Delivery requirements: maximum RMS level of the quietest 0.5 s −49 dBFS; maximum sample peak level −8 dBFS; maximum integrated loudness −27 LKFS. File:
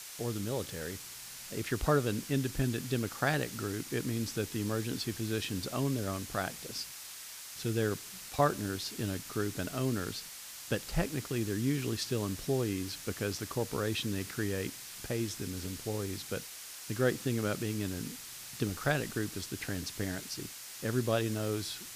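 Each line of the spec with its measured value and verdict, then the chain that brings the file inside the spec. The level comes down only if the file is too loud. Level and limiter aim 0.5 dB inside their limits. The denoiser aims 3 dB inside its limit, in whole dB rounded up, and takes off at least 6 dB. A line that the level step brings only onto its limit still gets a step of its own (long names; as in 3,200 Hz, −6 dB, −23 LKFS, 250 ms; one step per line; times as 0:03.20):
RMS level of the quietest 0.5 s −47 dBFS: out of spec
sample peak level −14.0 dBFS: in spec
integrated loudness −35.0 LKFS: in spec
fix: broadband denoise 6 dB, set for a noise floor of −47 dBFS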